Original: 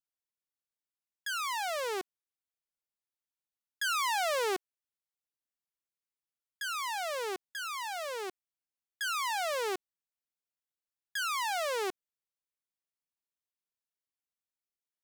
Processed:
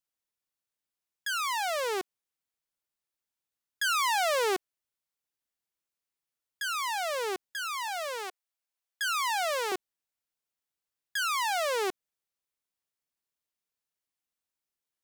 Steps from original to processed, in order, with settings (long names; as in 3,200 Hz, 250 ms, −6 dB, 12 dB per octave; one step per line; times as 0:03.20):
0:07.88–0:09.72: high-pass filter 490 Hz 24 dB per octave
level +3.5 dB